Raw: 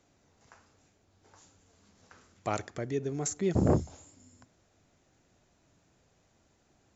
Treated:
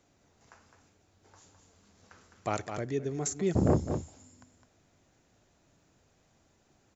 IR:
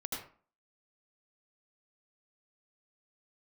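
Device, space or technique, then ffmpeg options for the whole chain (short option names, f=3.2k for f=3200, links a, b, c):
ducked delay: -filter_complex "[0:a]asplit=3[a][b][c];[b]adelay=209,volume=-7dB[d];[c]apad=whole_len=316010[e];[d][e]sidechaincompress=threshold=-42dB:ratio=8:attack=27:release=106[f];[a][f]amix=inputs=2:normalize=0"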